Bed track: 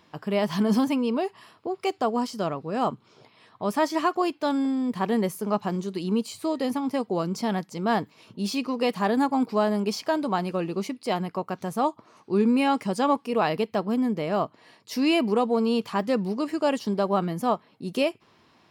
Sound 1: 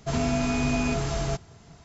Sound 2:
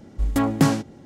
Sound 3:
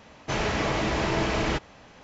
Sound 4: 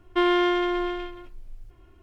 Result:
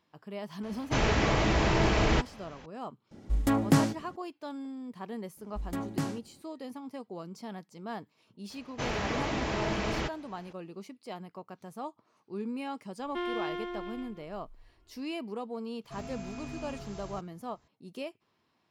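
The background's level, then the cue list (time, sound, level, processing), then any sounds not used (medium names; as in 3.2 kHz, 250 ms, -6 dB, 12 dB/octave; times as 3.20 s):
bed track -15 dB
0.63 s: add 3 -1 dB + bass shelf 110 Hz +7 dB
3.11 s: add 2 -5 dB
5.37 s: add 2 -14.5 dB
8.50 s: add 3 -6 dB
12.99 s: add 4 -13 dB
15.84 s: add 1 -17 dB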